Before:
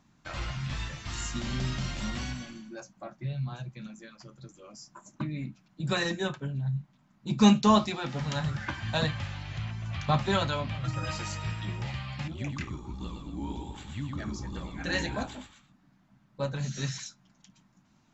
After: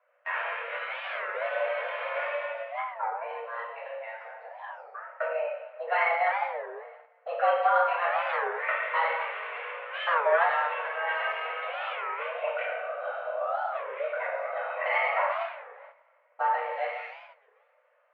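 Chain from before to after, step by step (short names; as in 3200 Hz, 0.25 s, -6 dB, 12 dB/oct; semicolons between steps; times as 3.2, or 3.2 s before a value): compressor 2:1, threshold -34 dBFS, peak gain reduction 11 dB; two-slope reverb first 0.82 s, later 2.8 s, DRR -6.5 dB; mistuned SSB +330 Hz 250–2100 Hz; gate -54 dBFS, range -10 dB; record warp 33 1/3 rpm, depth 250 cents; gain +5 dB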